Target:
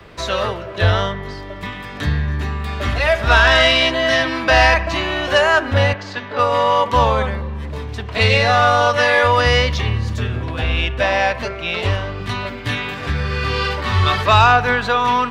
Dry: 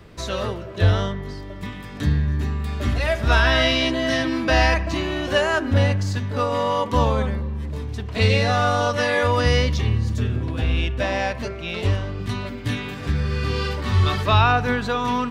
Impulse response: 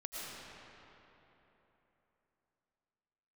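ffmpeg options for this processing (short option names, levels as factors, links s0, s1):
-filter_complex "[0:a]asettb=1/sr,asplit=3[s0][s1][s2];[s0]atrim=end=5.934[s3];[s1]atrim=start=5.93:end=6.39,asetpts=PTS-STARTPTS,afade=t=in:d=0.004:c=qsin,afade=t=out:st=0.456:d=0.004:c=qsin,acrossover=split=230 5000:gain=0.141 1 0.126[s4][s5][s6];[s4][s5][s6]amix=inputs=3:normalize=0[s7];[s2]atrim=start=6.386[s8];[s3][s7]acrossfade=d=0.004:c1=hsin:c2=qsin[s9];[s9][s8]acrossfade=d=0.004:c1=qsin:c2=hsin,acrossover=split=220|460|4300[s10][s11][s12][s13];[s11]acompressor=threshold=0.0112:ratio=6[s14];[s12]aeval=exprs='0.447*sin(PI/2*1.58*val(0)/0.447)':c=same[s15];[s10][s14][s15][s13]amix=inputs=4:normalize=0,volume=1.12"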